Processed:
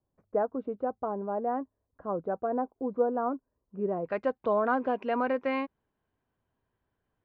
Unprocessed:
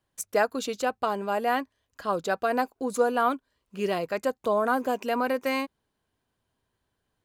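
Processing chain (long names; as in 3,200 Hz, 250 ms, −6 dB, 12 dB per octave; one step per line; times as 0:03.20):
Bessel low-pass filter 710 Hz, order 4, from 0:04.04 2,000 Hz
level −1.5 dB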